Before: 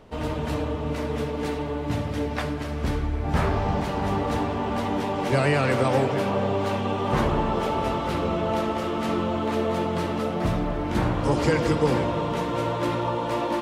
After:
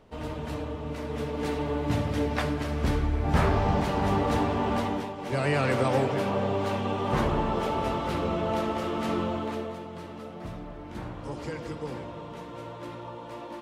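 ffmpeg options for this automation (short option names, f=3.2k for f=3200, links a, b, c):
-af "volume=9dB,afade=t=in:st=1.02:d=0.71:silence=0.473151,afade=t=out:st=4.74:d=0.42:silence=0.251189,afade=t=in:st=5.16:d=0.43:silence=0.354813,afade=t=out:st=9.23:d=0.56:silence=0.281838"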